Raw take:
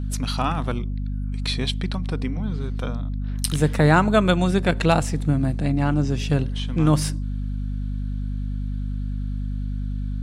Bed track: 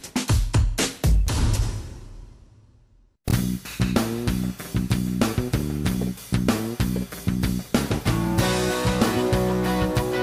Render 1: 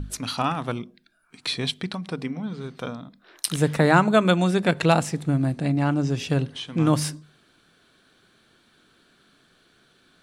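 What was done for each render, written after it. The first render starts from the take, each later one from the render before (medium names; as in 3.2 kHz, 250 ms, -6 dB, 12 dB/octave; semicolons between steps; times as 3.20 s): hum notches 50/100/150/200/250 Hz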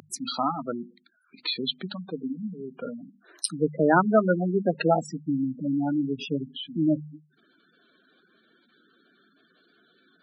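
spectral gate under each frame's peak -10 dB strong; high-pass 200 Hz 24 dB/octave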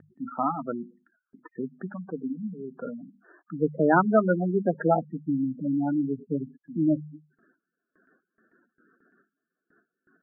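Chebyshev low-pass 1.8 kHz, order 10; gate with hold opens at -54 dBFS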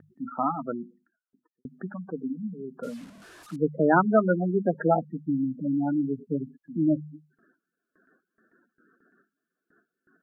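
0.62–1.65 s: studio fade out; 2.83–3.56 s: one-bit delta coder 64 kbps, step -44 dBFS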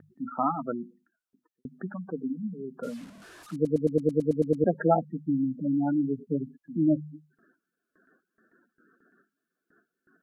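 3.54 s: stutter in place 0.11 s, 10 plays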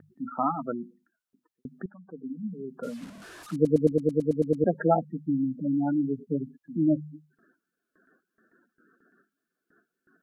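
1.86–2.48 s: fade in quadratic, from -14 dB; 3.02–3.92 s: gain +3.5 dB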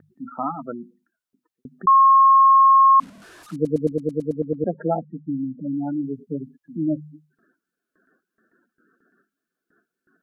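1.87–3.00 s: bleep 1.08 kHz -9.5 dBFS; 4.32–6.03 s: low-pass 1.1 kHz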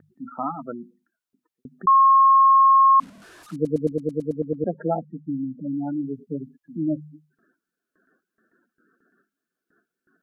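trim -1.5 dB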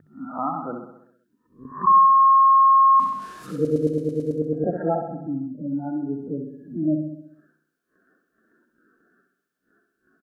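reverse spectral sustain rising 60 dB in 0.33 s; on a send: feedback delay 65 ms, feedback 59%, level -7 dB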